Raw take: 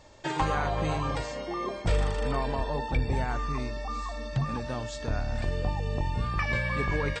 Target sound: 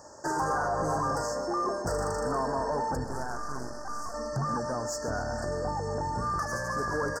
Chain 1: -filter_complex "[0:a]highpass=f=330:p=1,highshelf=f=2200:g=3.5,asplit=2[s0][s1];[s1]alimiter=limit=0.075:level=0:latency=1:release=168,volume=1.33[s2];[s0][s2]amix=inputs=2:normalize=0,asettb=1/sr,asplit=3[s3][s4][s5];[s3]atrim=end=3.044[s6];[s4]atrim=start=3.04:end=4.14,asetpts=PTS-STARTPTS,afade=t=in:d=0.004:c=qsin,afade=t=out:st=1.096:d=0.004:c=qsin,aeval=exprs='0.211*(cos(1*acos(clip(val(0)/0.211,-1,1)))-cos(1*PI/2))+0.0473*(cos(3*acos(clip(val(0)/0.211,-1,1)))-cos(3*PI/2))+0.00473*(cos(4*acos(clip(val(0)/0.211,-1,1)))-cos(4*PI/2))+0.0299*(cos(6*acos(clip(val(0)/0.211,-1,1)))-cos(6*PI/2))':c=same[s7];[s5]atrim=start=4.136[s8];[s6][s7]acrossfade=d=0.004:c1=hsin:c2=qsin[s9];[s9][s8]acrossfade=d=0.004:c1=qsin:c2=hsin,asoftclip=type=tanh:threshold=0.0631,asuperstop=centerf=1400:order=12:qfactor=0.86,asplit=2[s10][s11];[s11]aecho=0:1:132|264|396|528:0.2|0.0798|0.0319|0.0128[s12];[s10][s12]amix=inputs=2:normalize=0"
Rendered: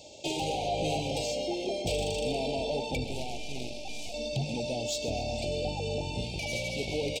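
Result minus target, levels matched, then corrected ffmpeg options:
4 kHz band +12.0 dB
-filter_complex "[0:a]highpass=f=330:p=1,highshelf=f=2200:g=3.5,asplit=2[s0][s1];[s1]alimiter=limit=0.075:level=0:latency=1:release=168,volume=1.33[s2];[s0][s2]amix=inputs=2:normalize=0,asettb=1/sr,asplit=3[s3][s4][s5];[s3]atrim=end=3.044[s6];[s4]atrim=start=3.04:end=4.14,asetpts=PTS-STARTPTS,afade=t=in:d=0.004:c=qsin,afade=t=out:st=1.096:d=0.004:c=qsin,aeval=exprs='0.211*(cos(1*acos(clip(val(0)/0.211,-1,1)))-cos(1*PI/2))+0.0473*(cos(3*acos(clip(val(0)/0.211,-1,1)))-cos(3*PI/2))+0.00473*(cos(4*acos(clip(val(0)/0.211,-1,1)))-cos(4*PI/2))+0.0299*(cos(6*acos(clip(val(0)/0.211,-1,1)))-cos(6*PI/2))':c=same[s7];[s5]atrim=start=4.136[s8];[s6][s7]acrossfade=d=0.004:c1=hsin:c2=qsin[s9];[s9][s8]acrossfade=d=0.004:c1=qsin:c2=hsin,asoftclip=type=tanh:threshold=0.0631,asuperstop=centerf=2900:order=12:qfactor=0.86,asplit=2[s10][s11];[s11]aecho=0:1:132|264|396|528:0.2|0.0798|0.0319|0.0128[s12];[s10][s12]amix=inputs=2:normalize=0"

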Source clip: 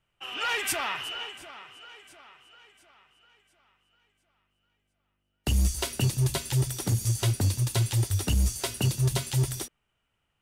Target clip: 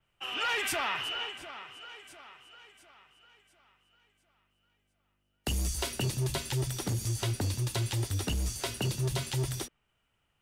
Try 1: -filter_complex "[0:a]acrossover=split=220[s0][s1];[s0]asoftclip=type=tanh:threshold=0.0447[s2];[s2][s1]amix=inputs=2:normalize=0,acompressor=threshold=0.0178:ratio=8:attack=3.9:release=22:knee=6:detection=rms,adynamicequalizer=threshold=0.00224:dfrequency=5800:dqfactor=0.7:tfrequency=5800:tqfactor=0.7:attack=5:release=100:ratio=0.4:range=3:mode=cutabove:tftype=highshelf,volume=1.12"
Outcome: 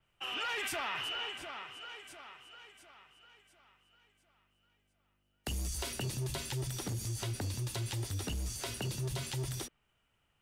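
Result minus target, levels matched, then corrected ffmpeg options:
compression: peak gain reduction +7 dB
-filter_complex "[0:a]acrossover=split=220[s0][s1];[s0]asoftclip=type=tanh:threshold=0.0447[s2];[s2][s1]amix=inputs=2:normalize=0,acompressor=threshold=0.0447:ratio=8:attack=3.9:release=22:knee=6:detection=rms,adynamicequalizer=threshold=0.00224:dfrequency=5800:dqfactor=0.7:tfrequency=5800:tqfactor=0.7:attack=5:release=100:ratio=0.4:range=3:mode=cutabove:tftype=highshelf,volume=1.12"

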